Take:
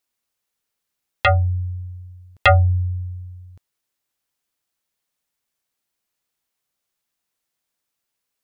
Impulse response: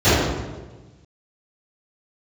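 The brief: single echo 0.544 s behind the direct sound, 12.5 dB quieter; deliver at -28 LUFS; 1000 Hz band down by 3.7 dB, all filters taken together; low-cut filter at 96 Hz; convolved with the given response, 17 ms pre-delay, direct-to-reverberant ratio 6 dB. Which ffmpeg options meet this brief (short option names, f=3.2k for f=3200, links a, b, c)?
-filter_complex "[0:a]highpass=96,equalizer=f=1k:t=o:g=-6,aecho=1:1:544:0.237,asplit=2[a][b];[1:a]atrim=start_sample=2205,adelay=17[c];[b][c]afir=irnorm=-1:irlink=0,volume=-32.5dB[d];[a][d]amix=inputs=2:normalize=0,volume=-11.5dB"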